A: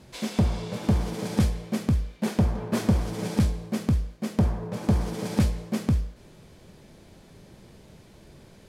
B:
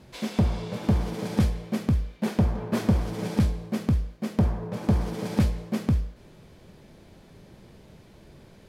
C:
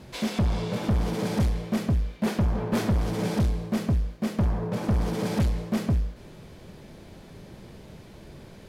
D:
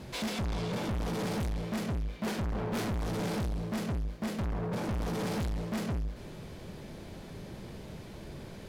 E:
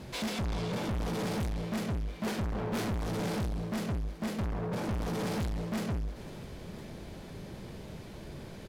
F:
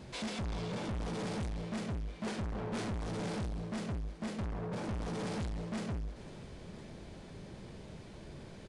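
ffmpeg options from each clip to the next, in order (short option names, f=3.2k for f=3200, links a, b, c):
-af "equalizer=f=8.2k:w=0.72:g=-5"
-af "asoftclip=type=tanh:threshold=-24dB,volume=5dB"
-af "asoftclip=type=tanh:threshold=-32dB,volume=1.5dB"
-af "aecho=1:1:1010:0.119"
-af "aresample=22050,aresample=44100,volume=-4.5dB"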